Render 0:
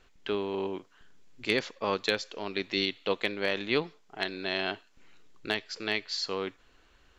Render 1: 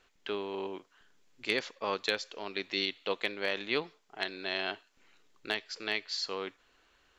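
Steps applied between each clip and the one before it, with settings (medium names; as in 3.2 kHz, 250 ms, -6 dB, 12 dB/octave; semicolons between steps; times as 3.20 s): bass shelf 240 Hz -10.5 dB; trim -2 dB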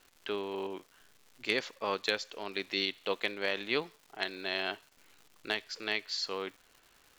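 crackle 330 per s -48 dBFS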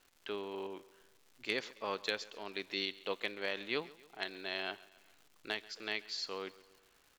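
feedback delay 136 ms, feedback 52%, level -20.5 dB; trim -5 dB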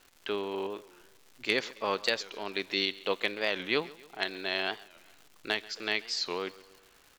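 warped record 45 rpm, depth 160 cents; trim +7.5 dB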